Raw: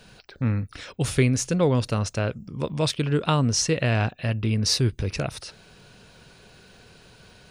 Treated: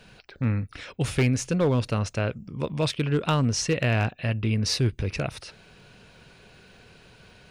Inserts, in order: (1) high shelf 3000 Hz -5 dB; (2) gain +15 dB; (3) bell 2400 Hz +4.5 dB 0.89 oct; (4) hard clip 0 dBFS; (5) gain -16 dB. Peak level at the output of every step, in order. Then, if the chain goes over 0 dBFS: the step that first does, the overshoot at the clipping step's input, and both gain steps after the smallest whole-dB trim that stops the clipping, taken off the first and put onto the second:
-9.0, +6.0, +7.5, 0.0, -16.0 dBFS; step 2, 7.5 dB; step 2 +7 dB, step 5 -8 dB

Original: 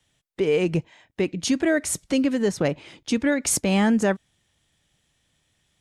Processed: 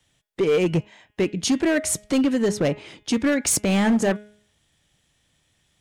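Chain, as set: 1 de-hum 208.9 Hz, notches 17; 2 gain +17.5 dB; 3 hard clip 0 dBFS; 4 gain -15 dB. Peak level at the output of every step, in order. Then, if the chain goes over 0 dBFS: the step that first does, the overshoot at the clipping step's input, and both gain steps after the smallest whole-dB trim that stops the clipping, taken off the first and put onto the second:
-9.0, +8.5, 0.0, -15.0 dBFS; step 2, 8.5 dB; step 2 +8.5 dB, step 4 -6 dB

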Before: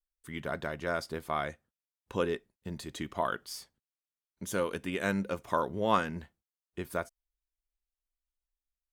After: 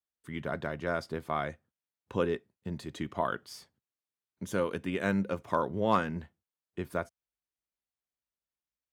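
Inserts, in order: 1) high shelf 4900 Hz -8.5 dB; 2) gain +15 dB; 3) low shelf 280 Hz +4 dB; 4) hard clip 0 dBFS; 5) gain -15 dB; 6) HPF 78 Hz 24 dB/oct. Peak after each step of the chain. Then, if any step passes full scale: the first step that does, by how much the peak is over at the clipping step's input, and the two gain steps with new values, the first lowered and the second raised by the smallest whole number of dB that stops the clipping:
-11.5, +3.5, +3.5, 0.0, -15.0, -11.5 dBFS; step 2, 3.5 dB; step 2 +11 dB, step 5 -11 dB

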